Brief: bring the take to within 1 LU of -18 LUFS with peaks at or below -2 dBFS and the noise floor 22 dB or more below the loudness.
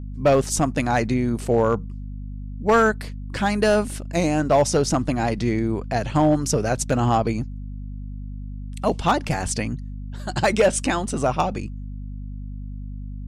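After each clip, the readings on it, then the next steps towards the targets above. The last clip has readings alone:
clipped 0.5%; flat tops at -10.5 dBFS; hum 50 Hz; harmonics up to 250 Hz; hum level -30 dBFS; loudness -22.0 LUFS; peak -10.5 dBFS; loudness target -18.0 LUFS
-> clip repair -10.5 dBFS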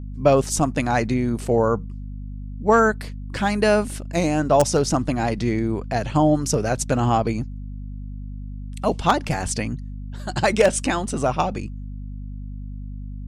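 clipped 0.0%; hum 50 Hz; harmonics up to 250 Hz; hum level -30 dBFS
-> notches 50/100/150/200/250 Hz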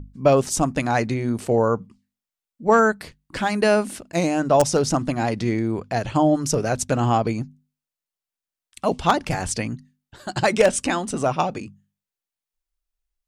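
hum none; loudness -21.5 LUFS; peak -1.0 dBFS; loudness target -18.0 LUFS
-> gain +3.5 dB; limiter -2 dBFS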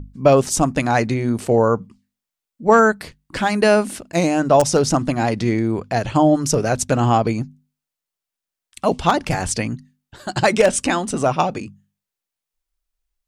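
loudness -18.5 LUFS; peak -2.0 dBFS; noise floor -86 dBFS

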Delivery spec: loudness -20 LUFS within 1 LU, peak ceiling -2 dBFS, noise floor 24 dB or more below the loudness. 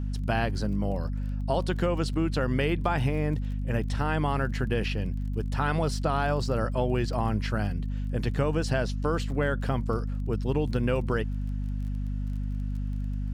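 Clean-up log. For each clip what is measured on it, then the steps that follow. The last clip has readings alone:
ticks 22/s; hum 50 Hz; harmonics up to 250 Hz; hum level -28 dBFS; loudness -29.0 LUFS; peak -13.0 dBFS; loudness target -20.0 LUFS
-> de-click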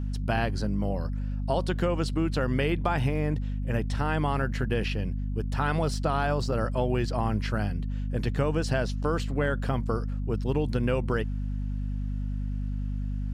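ticks 0.075/s; hum 50 Hz; harmonics up to 250 Hz; hum level -28 dBFS
-> de-hum 50 Hz, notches 5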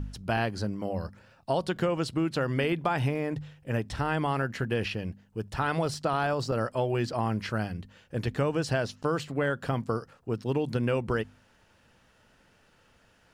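hum none; loudness -30.0 LUFS; peak -12.5 dBFS; loudness target -20.0 LUFS
-> gain +10 dB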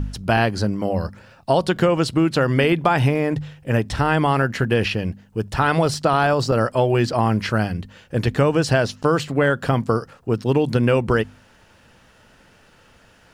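loudness -20.0 LUFS; peak -2.5 dBFS; noise floor -53 dBFS

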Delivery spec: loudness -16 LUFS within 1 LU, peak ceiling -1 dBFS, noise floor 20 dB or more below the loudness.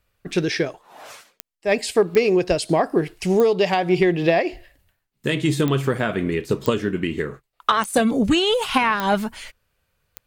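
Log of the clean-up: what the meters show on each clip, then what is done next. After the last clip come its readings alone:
clicks 8; loudness -21.0 LUFS; peak -5.5 dBFS; loudness target -16.0 LUFS
-> de-click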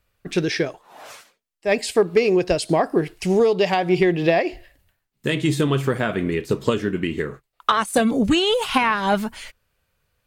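clicks 0; loudness -21.0 LUFS; peak -6.5 dBFS; loudness target -16.0 LUFS
-> gain +5 dB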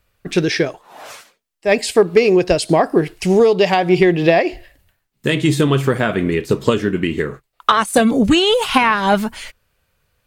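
loudness -16.0 LUFS; peak -1.5 dBFS; noise floor -70 dBFS

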